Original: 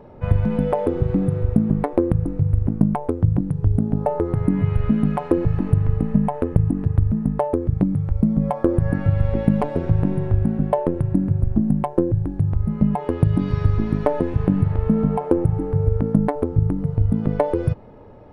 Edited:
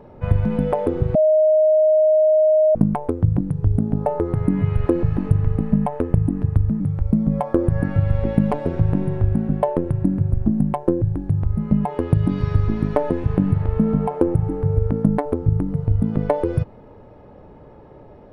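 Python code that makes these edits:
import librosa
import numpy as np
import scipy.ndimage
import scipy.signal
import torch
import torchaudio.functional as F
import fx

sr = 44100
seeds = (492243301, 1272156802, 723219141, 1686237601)

y = fx.edit(x, sr, fx.bleep(start_s=1.15, length_s=1.6, hz=622.0, db=-11.5),
    fx.cut(start_s=4.86, length_s=0.42),
    fx.cut(start_s=7.22, length_s=0.68), tone=tone)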